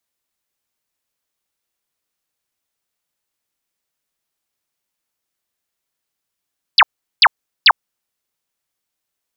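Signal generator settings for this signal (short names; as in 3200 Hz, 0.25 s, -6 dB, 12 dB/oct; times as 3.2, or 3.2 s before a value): burst of laser zaps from 5300 Hz, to 730 Hz, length 0.05 s sine, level -4.5 dB, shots 3, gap 0.39 s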